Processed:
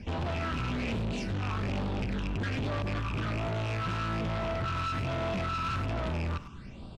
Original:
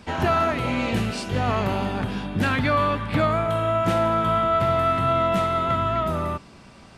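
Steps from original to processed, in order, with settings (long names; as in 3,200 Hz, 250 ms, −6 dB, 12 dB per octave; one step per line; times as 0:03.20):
loose part that buzzes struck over −29 dBFS, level −17 dBFS
low-shelf EQ 93 Hz +11 dB
brickwall limiter −14.5 dBFS, peak gain reduction 6.5 dB
0:02.82–0:03.87: all-pass dispersion highs, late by 46 ms, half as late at 340 Hz
all-pass phaser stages 8, 1.2 Hz, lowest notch 550–2,000 Hz
hard clipping −30 dBFS, distortion −6 dB
high-frequency loss of the air 90 metres
far-end echo of a speakerphone 100 ms, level −9 dB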